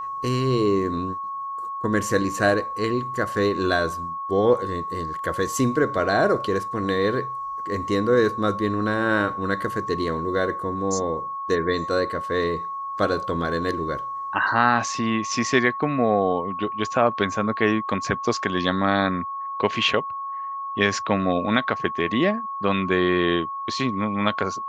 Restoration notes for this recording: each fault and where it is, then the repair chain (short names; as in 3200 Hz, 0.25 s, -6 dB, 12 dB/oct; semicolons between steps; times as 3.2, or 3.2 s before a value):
tone 1100 Hz -28 dBFS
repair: notch 1100 Hz, Q 30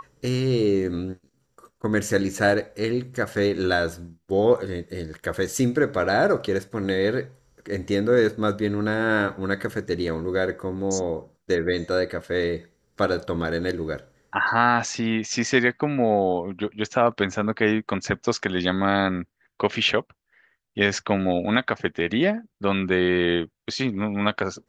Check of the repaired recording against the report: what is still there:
none